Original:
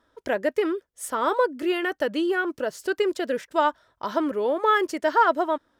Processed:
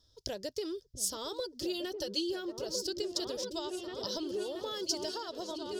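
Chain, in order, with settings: 1.39–2.65 s: comb 5.5 ms, depth 87%; on a send: delay with an opening low-pass 677 ms, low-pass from 200 Hz, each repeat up 2 oct, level -3 dB; on the sum: compression 5:1, threshold -23 dBFS, peak gain reduction 9.5 dB; FFT filter 120 Hz 0 dB, 240 Hz -19 dB, 400 Hz -15 dB, 1.4 kHz -26 dB, 2.2 kHz -25 dB, 3.4 kHz -4 dB, 5.1 kHz +9 dB, 8.4 kHz -6 dB; trim +6 dB

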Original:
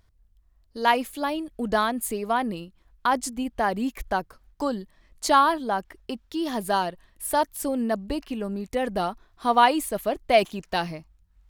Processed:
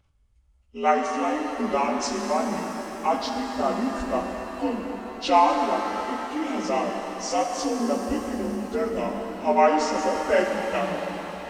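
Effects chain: frequency axis rescaled in octaves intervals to 84%; pitch-shifted reverb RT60 3.8 s, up +7 st, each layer -8 dB, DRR 2.5 dB

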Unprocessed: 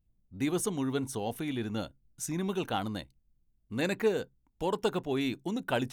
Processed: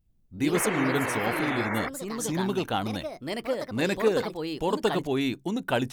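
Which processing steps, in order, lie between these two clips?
painted sound noise, 0.54–1.89 s, 270–2300 Hz -36 dBFS; ever faster or slower copies 92 ms, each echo +3 st, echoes 2, each echo -6 dB; trim +4 dB

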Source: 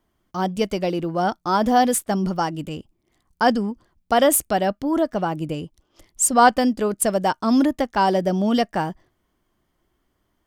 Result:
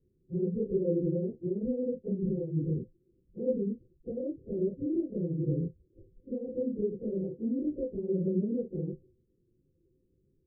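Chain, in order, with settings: phase randomisation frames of 100 ms; compression 3:1, threshold -28 dBFS, peak gain reduction 14 dB; rippled Chebyshev low-pass 530 Hz, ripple 9 dB; trim +5.5 dB

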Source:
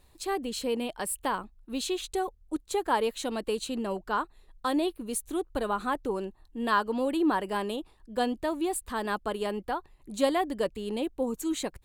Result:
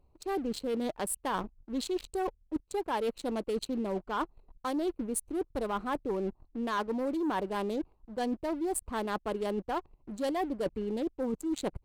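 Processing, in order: local Wiener filter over 25 samples; waveshaping leveller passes 2; reverse; compression 6:1, threshold -30 dBFS, peak gain reduction 13 dB; reverse

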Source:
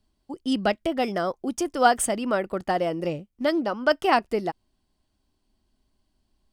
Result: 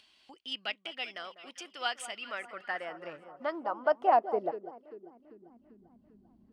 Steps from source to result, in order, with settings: echo whose repeats swap between lows and highs 197 ms, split 1.3 kHz, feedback 61%, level -12 dB; band-pass sweep 2.8 kHz -> 210 Hz, 2.11–5.86 s; upward compressor, threshold -45 dBFS

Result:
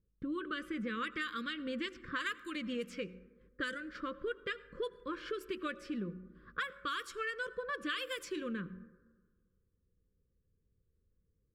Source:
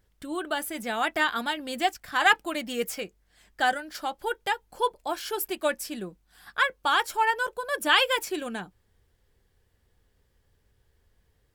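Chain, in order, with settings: de-hum 184.6 Hz, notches 5; gate -58 dBFS, range -12 dB; elliptic band-stop 530–1100 Hz, stop band 40 dB; level-controlled noise filter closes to 690 Hz, open at -22 dBFS; peaking EQ 180 Hz +7 dB 0.62 oct; compression 12:1, threshold -37 dBFS, peak gain reduction 21.5 dB; reverberation RT60 1.5 s, pre-delay 73 ms, DRR 17.5 dB; trim +2 dB

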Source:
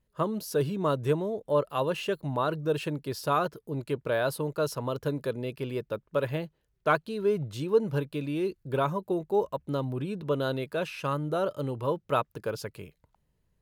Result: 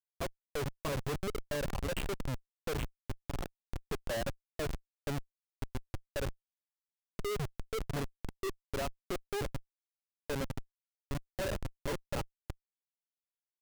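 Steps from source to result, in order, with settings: zero-crossing glitches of -19 dBFS; peak limiter -20.5 dBFS, peak gain reduction 10 dB; treble shelf 5.4 kHz -10 dB; level held to a coarse grid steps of 14 dB; 8.23–10.57 s: high-pass 150 Hz 12 dB/octave; dynamic bell 790 Hz, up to +8 dB, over -47 dBFS, Q 0.75; band-stop 1.2 kHz, Q 21; comb 7.3 ms, depth 45%; spectral noise reduction 27 dB; level-controlled noise filter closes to 430 Hz, open at -26.5 dBFS; Schmitt trigger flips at -37 dBFS

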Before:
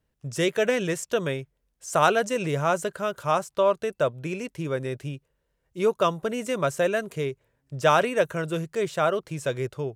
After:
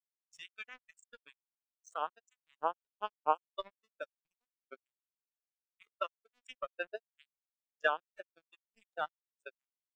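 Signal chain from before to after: amplifier tone stack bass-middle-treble 10-0-10; compression 5:1, threshold -41 dBFS, peak gain reduction 16.5 dB; bit crusher 6-bit; spectral contrast expander 4:1; trim +16.5 dB

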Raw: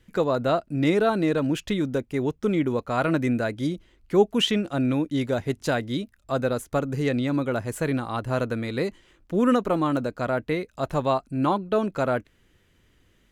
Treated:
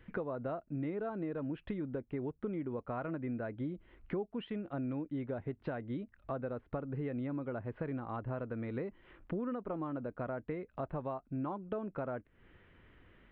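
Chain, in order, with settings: compression 6:1, threshold -36 dBFS, peak gain reduction 21 dB; Gaussian low-pass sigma 4 samples; tape noise reduction on one side only encoder only

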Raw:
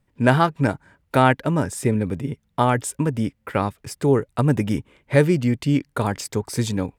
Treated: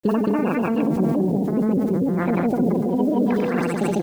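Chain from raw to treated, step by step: coarse spectral quantiser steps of 30 dB; Doppler pass-by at 2.51 s, 6 m/s, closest 4.8 m; steep low-pass 10 kHz 48 dB/octave; tone controls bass +14 dB, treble -6 dB; on a send: multi-tap echo 54/281/451/788 ms -20/-3.5/-9/-19 dB; on the sum: speed mistake 45 rpm record played at 78 rpm; low-pass that closes with the level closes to 460 Hz, closed at -14 dBFS; FFT filter 110 Hz 0 dB, 710 Hz +4 dB, 3.4 kHz +6 dB, 7.7 kHz +10 dB; compression 10:1, threshold -22 dBFS, peak gain reduction 14 dB; granulator 133 ms, grains 20 per s, spray 164 ms; word length cut 10-bit, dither none; decay stretcher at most 20 dB/s; trim +7 dB

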